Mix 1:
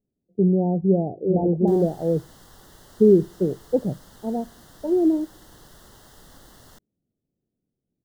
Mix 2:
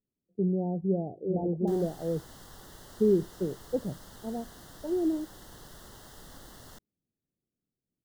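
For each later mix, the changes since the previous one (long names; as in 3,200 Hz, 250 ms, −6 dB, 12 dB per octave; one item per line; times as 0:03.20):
speech −9.0 dB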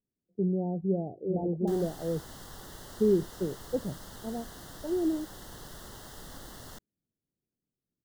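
speech: send −7.0 dB
background +3.5 dB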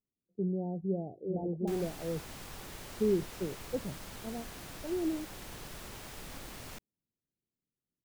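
speech −4.5 dB
master: remove Butterworth band-reject 2,400 Hz, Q 2.4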